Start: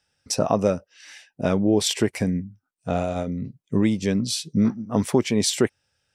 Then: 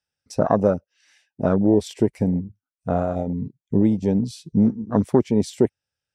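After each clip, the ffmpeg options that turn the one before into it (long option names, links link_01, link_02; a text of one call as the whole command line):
ffmpeg -i in.wav -af "afwtdn=0.0562,volume=2.5dB" out.wav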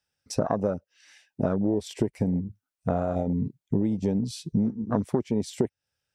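ffmpeg -i in.wav -af "acompressor=threshold=-26dB:ratio=5,volume=3.5dB" out.wav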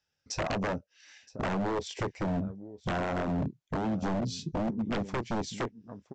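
ffmpeg -i in.wav -filter_complex "[0:a]asplit=2[link_01][link_02];[link_02]adelay=26,volume=-14dB[link_03];[link_01][link_03]amix=inputs=2:normalize=0,aecho=1:1:970:0.1,aresample=16000,aeval=exprs='0.0562*(abs(mod(val(0)/0.0562+3,4)-2)-1)':channel_layout=same,aresample=44100" out.wav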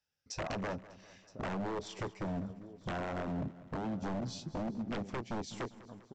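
ffmpeg -i in.wav -af "aecho=1:1:199|398|597|796|995:0.126|0.0705|0.0395|0.0221|0.0124,volume=-6.5dB" out.wav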